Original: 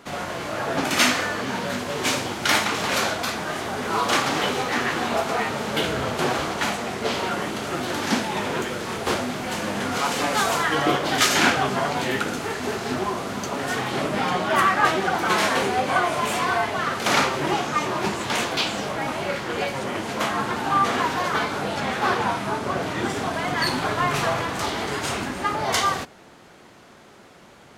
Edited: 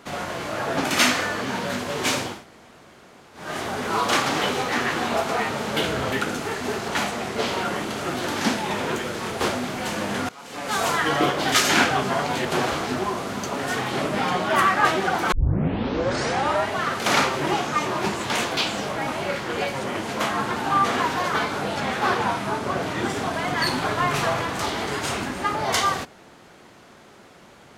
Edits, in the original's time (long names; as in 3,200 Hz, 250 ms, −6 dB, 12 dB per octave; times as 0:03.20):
0:02.34–0:03.45: fill with room tone, crossfade 0.24 s
0:06.12–0:06.54: swap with 0:12.11–0:12.87
0:09.95–0:10.51: fade in quadratic, from −21.5 dB
0:15.32: tape start 1.43 s